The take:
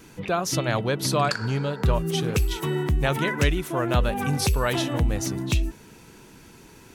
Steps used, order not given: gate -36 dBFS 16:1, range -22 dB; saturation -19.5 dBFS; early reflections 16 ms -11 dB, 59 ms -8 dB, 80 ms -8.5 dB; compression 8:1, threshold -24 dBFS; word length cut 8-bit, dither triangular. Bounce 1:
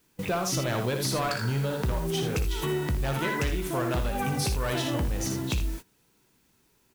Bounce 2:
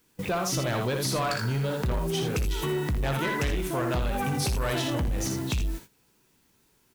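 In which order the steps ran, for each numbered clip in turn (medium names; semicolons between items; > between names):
saturation > early reflections > compression > word length cut > gate; word length cut > gate > early reflections > saturation > compression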